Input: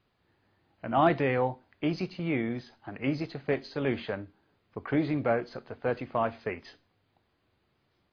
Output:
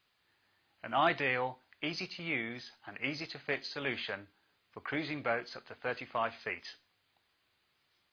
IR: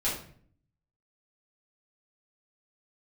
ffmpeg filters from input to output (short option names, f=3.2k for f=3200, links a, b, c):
-af "tiltshelf=f=970:g=-9.5,volume=-3.5dB"